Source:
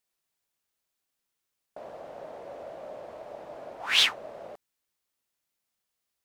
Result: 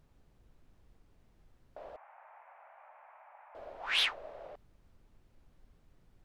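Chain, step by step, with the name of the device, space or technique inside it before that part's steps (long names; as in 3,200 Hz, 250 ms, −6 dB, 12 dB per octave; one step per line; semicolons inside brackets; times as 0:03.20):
aircraft cabin announcement (band-pass filter 360–4,100 Hz; soft clipping −16 dBFS, distortion −17 dB; brown noise bed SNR 18 dB)
0:01.96–0:03.55: elliptic band-pass filter 830–2,400 Hz, stop band 60 dB
level −4.5 dB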